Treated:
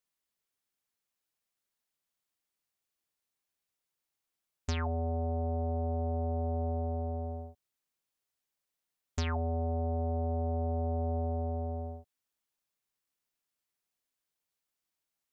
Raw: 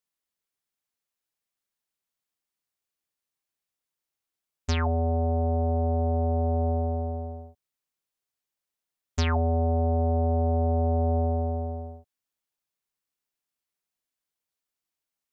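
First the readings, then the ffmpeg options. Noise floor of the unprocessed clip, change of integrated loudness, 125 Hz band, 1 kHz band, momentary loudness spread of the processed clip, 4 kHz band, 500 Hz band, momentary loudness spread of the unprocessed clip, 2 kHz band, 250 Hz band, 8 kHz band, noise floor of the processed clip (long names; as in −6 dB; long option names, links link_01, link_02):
below −85 dBFS, −8.0 dB, −7.5 dB, −7.5 dB, 8 LU, −7.5 dB, −7.5 dB, 11 LU, −7.5 dB, −7.5 dB, can't be measured, below −85 dBFS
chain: -af "acompressor=threshold=-34dB:ratio=2.5"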